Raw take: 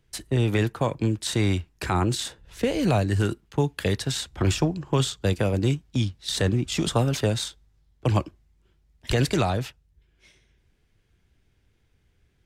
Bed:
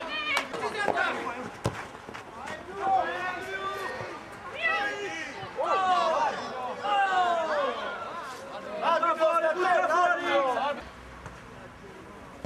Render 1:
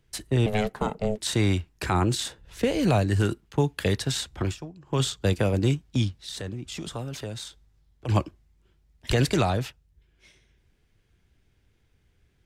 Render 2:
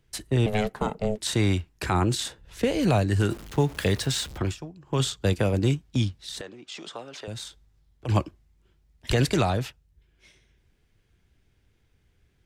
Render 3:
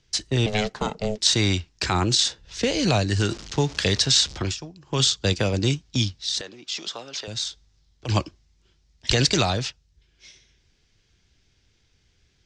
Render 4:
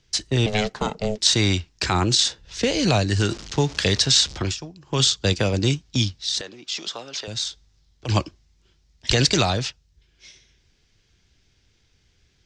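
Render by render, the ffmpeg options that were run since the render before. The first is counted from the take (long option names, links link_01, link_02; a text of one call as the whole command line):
ffmpeg -i in.wav -filter_complex "[0:a]asettb=1/sr,asplit=3[link_01][link_02][link_03];[link_01]atrim=end=0.464[link_04];[link_02]atrim=start=0.46:end=1.19,asetpts=PTS-STARTPTS,afade=type=in:duration=0.004:curve=qsin,afade=type=out:start_time=0.726:duration=0.004:curve=qsin,aeval=exprs='val(0)*sin(2*PI*320*n/s)':channel_layout=same[link_05];[link_03]atrim=start=1.186[link_06];[link_04][link_05]acrossfade=duration=0.004:curve1=hsin:curve2=qsin[link_07];[link_07][link_06]acrossfade=duration=0.004:curve1=qsin:curve2=hsin,asplit=3[link_08][link_09][link_10];[link_08]afade=type=out:start_time=6.2:duration=0.02[link_11];[link_09]acompressor=threshold=-40dB:ratio=2:attack=3.2:release=140:knee=1:detection=peak,afade=type=in:start_time=6.2:duration=0.02,afade=type=out:start_time=8.08:duration=0.02[link_12];[link_10]afade=type=in:start_time=8.08:duration=0.02[link_13];[link_11][link_12][link_13]amix=inputs=3:normalize=0,asplit=3[link_14][link_15][link_16];[link_14]atrim=end=4.57,asetpts=PTS-STARTPTS,afade=type=out:start_time=4.33:duration=0.24:silence=0.158489[link_17];[link_15]atrim=start=4.57:end=4.81,asetpts=PTS-STARTPTS,volume=-16dB[link_18];[link_16]atrim=start=4.81,asetpts=PTS-STARTPTS,afade=type=in:duration=0.24:silence=0.158489[link_19];[link_17][link_18][link_19]concat=n=3:v=0:a=1" out.wav
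ffmpeg -i in.wav -filter_complex "[0:a]asettb=1/sr,asplit=3[link_01][link_02][link_03];[link_01]atrim=end=3.304[link_04];[link_02]atrim=start=3.3:end=4.38,asetpts=PTS-STARTPTS,afade=type=in:duration=0.004:curve=qsin,afade=type=out:start_time=1.076:duration=0.004:curve=qsin,aeval=exprs='val(0)+0.5*0.0141*sgn(val(0))':channel_layout=same[link_05];[link_03]atrim=start=4.376[link_06];[link_04][link_05]acrossfade=duration=0.004:curve1=hsin:curve2=qsin[link_07];[link_07][link_06]acrossfade=duration=0.004:curve1=qsin:curve2=hsin,asettb=1/sr,asplit=3[link_08][link_09][link_10];[link_08]atrim=end=6.414[link_11];[link_09]atrim=start=6.41:end=7.28,asetpts=PTS-STARTPTS,afade=type=in:duration=0.004:curve=qsin,afade=type=out:start_time=0.866:duration=0.004:curve=qsin,highpass=410,lowpass=5700[link_12];[link_10]atrim=start=7.276[link_13];[link_11][link_12]acrossfade=duration=0.004:curve1=hsin:curve2=qsin[link_14];[link_14][link_13]acrossfade=duration=0.004:curve1=qsin:curve2=hsin" out.wav
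ffmpeg -i in.wav -af "lowpass=frequency=7100:width=0.5412,lowpass=frequency=7100:width=1.3066,equalizer=frequency=5400:width_type=o:width=1.7:gain=14.5" out.wav
ffmpeg -i in.wav -af "volume=1.5dB,alimiter=limit=-3dB:level=0:latency=1" out.wav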